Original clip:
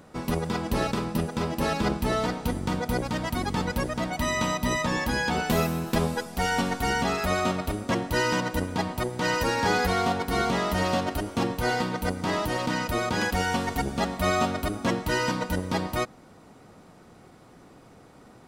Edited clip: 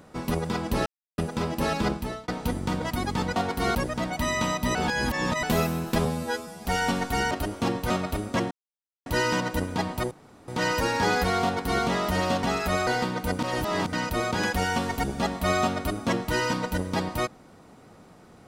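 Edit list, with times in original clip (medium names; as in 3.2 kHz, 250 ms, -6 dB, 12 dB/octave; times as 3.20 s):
0.86–1.18 s: mute
1.86–2.28 s: fade out
2.82–3.21 s: delete
4.75–5.43 s: reverse
6.05–6.35 s: stretch 2×
7.01–7.45 s: swap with 11.06–11.65 s
8.06 s: insert silence 0.55 s
9.11 s: insert room tone 0.37 s
10.07–10.46 s: copy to 3.75 s
12.17–12.71 s: reverse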